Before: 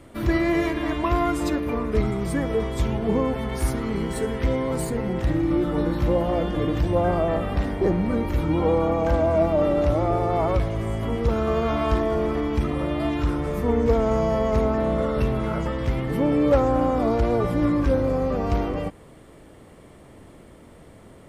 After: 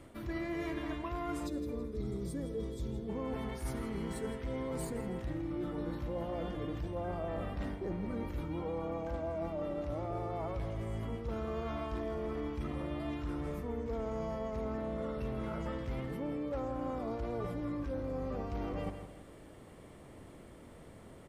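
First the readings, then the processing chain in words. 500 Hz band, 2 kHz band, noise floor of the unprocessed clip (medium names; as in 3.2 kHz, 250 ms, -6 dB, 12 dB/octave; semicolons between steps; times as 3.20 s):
-16.0 dB, -15.0 dB, -48 dBFS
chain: feedback delay 164 ms, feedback 37%, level -14 dB; reverse; compression 12:1, threshold -28 dBFS, peak gain reduction 15 dB; reverse; time-frequency box 1.47–3.08 s, 610–3300 Hz -11 dB; trim -6 dB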